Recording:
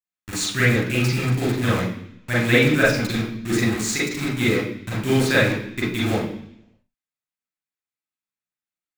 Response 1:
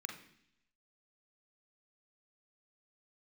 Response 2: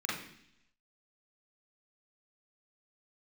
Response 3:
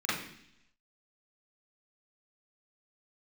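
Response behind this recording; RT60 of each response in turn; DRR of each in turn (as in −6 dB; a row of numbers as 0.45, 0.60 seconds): 2; 0.70, 0.70, 0.70 seconds; 3.0, −6.5, −11.0 decibels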